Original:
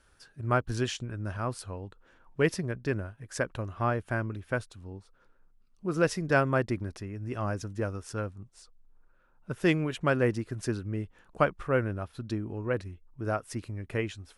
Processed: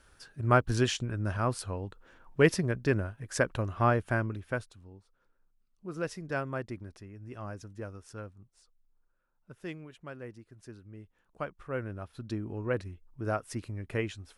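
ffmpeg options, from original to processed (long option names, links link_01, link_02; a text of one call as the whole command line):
ffmpeg -i in.wav -af "volume=20dB,afade=type=out:start_time=3.95:duration=0.95:silence=0.251189,afade=type=out:start_time=8.23:duration=1.75:silence=0.354813,afade=type=in:start_time=10.56:duration=1.01:silence=0.473151,afade=type=in:start_time=11.57:duration=1.01:silence=0.298538" out.wav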